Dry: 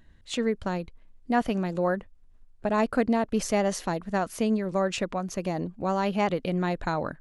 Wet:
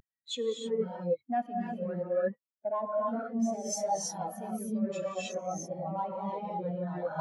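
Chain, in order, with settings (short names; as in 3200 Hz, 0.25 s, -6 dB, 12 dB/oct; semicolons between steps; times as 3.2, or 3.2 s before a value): in parallel at +2.5 dB: limiter -21 dBFS, peak gain reduction 10 dB; on the sum: HPF 100 Hz 24 dB/oct; bell 210 Hz -5.5 dB 2.3 oct; notch 2800 Hz, Q 8.9; soft clip -23.5 dBFS, distortion -9 dB; non-linear reverb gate 0.35 s rising, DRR -5.5 dB; reverse; compressor 12:1, threshold -27 dBFS, peak gain reduction 12 dB; reverse; tilt +2 dB/oct; spectral expander 2.5:1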